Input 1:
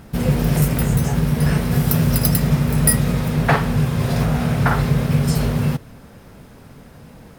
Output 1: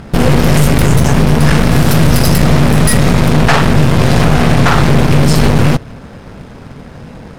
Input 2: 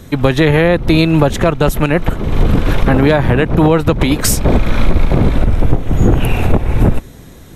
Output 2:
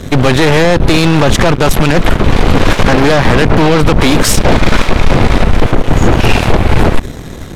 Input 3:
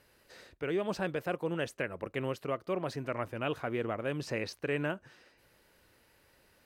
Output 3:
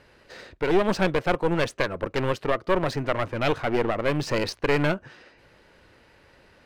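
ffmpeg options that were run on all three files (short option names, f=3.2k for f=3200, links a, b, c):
-af "apsyclip=16dB,aeval=exprs='1.12*(cos(1*acos(clip(val(0)/1.12,-1,1)))-cos(1*PI/2))+0.355*(cos(4*acos(clip(val(0)/1.12,-1,1)))-cos(4*PI/2))':c=same,adynamicsmooth=sensitivity=8:basefreq=4.7k,volume=-5dB"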